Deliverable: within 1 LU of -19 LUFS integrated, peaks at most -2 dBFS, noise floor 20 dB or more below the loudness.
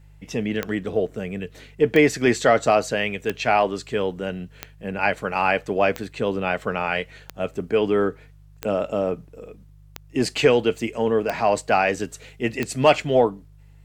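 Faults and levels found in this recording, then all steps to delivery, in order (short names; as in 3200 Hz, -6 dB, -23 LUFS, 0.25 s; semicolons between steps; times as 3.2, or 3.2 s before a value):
clicks 10; hum 50 Hz; harmonics up to 150 Hz; hum level -46 dBFS; loudness -22.5 LUFS; peak -4.0 dBFS; loudness target -19.0 LUFS
-> de-click; de-hum 50 Hz, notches 3; gain +3.5 dB; limiter -2 dBFS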